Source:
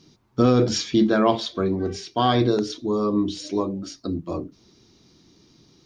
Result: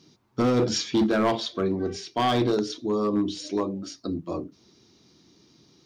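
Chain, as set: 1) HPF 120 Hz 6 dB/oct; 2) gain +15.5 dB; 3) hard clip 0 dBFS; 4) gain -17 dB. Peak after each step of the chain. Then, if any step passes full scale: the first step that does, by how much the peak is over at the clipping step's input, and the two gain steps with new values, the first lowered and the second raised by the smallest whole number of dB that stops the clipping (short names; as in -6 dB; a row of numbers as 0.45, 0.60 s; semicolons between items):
-6.0, +9.5, 0.0, -17.0 dBFS; step 2, 9.5 dB; step 2 +5.5 dB, step 4 -7 dB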